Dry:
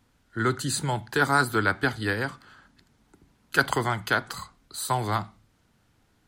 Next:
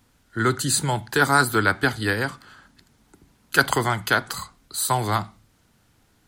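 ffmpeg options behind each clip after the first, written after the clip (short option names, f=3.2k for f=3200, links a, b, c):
-af "highshelf=f=5.9k:g=6.5,volume=3.5dB"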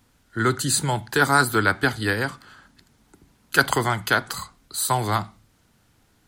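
-af anull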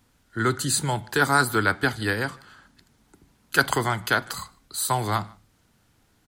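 -filter_complex "[0:a]asplit=2[a][b];[b]adelay=151.6,volume=-26dB,highshelf=f=4k:g=-3.41[c];[a][c]amix=inputs=2:normalize=0,volume=-2dB"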